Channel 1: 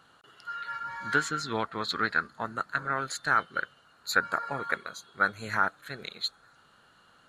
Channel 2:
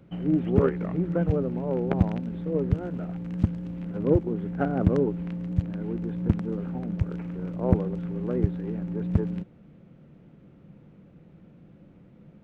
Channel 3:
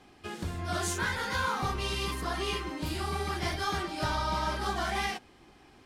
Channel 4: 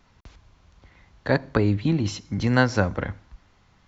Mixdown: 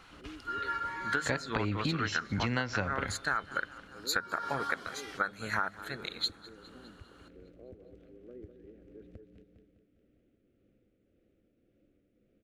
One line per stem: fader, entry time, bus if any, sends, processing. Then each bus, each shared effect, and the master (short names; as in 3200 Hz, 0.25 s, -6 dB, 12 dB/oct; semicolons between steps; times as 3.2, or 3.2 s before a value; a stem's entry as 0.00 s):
+2.5 dB, 0.00 s, no send, echo send -22 dB, notches 50/100/150/200 Hz
-11.5 dB, 0.00 s, no send, echo send -10 dB, compressor, threshold -29 dBFS, peak gain reduction 15 dB; fixed phaser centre 390 Hz, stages 4
-2.0 dB, 0.00 s, no send, no echo send, HPF 1200 Hz; compressor, threshold -42 dBFS, peak gain reduction 12 dB; auto duck -23 dB, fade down 0.75 s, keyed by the fourth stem
-2.5 dB, 0.00 s, no send, no echo send, bell 2600 Hz +11 dB 1.4 oct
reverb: off
echo: feedback echo 0.203 s, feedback 57%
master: tremolo triangle 1.8 Hz, depth 35%; compressor 12:1, threshold -27 dBFS, peak gain reduction 12 dB